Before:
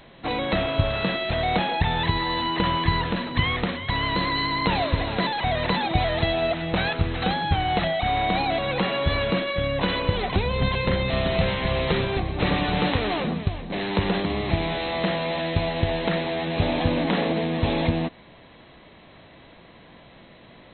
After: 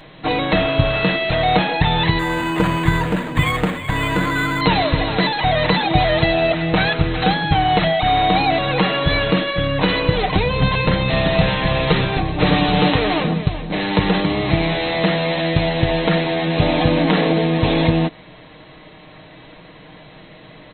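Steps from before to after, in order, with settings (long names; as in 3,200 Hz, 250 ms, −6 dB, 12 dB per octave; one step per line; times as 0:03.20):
comb filter 6.5 ms, depth 52%
0:02.19–0:04.61: linearly interpolated sample-rate reduction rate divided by 8×
level +6 dB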